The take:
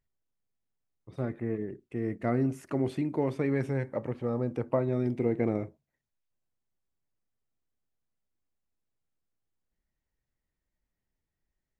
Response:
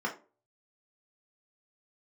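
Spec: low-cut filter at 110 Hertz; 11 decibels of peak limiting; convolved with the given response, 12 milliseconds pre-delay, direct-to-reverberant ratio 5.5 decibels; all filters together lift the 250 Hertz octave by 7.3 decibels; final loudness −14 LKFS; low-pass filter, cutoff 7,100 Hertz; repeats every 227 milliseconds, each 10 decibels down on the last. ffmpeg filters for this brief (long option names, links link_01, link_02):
-filter_complex "[0:a]highpass=110,lowpass=7100,equalizer=frequency=250:width_type=o:gain=8.5,alimiter=limit=-22.5dB:level=0:latency=1,aecho=1:1:227|454|681|908:0.316|0.101|0.0324|0.0104,asplit=2[link_01][link_02];[1:a]atrim=start_sample=2205,adelay=12[link_03];[link_02][link_03]afir=irnorm=-1:irlink=0,volume=-12.5dB[link_04];[link_01][link_04]amix=inputs=2:normalize=0,volume=16dB"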